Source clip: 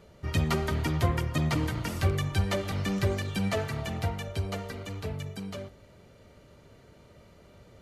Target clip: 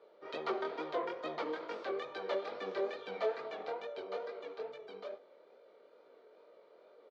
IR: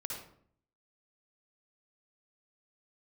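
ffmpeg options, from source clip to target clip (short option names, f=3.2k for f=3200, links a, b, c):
-af "highpass=f=380:w=0.5412,highpass=f=380:w=1.3066,equalizer=f=480:t=q:w=4:g=8,equalizer=f=1.9k:t=q:w=4:g=-7,equalizer=f=2.8k:t=q:w=4:g=-10,lowpass=f=3.7k:w=0.5412,lowpass=f=3.7k:w=1.3066,atempo=1.1,flanger=delay=18.5:depth=7.1:speed=2.3,volume=-1.5dB"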